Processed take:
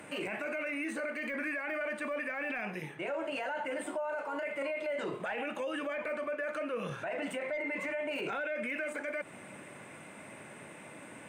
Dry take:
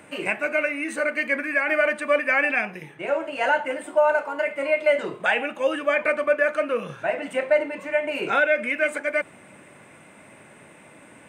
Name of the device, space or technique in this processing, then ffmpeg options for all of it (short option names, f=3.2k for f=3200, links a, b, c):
podcast mastering chain: -filter_complex "[0:a]asettb=1/sr,asplit=3[a][b][c];[a]atrim=end=7.424[d];[b]atrim=start=7.42:end=7.88,asetpts=PTS-STARTPTS,afade=t=in:d=0.004:c=qsin,afade=t=out:st=0.456:d=0.004:c=qsin,equalizer=f=2.1k:w=7.5:g=12.5[e];[c]atrim=start=7.876[f];[d][e]acrossfade=d=0.004:c1=hsin:c2=qsin[g];[g][f]acrossfade=d=0.004:c1=qsin:c2=hsin,highpass=80,deesser=0.95,acompressor=threshold=-27dB:ratio=3,alimiter=level_in=4dB:limit=-24dB:level=0:latency=1:release=18,volume=-4dB" -ar 48000 -c:a libmp3lame -b:a 112k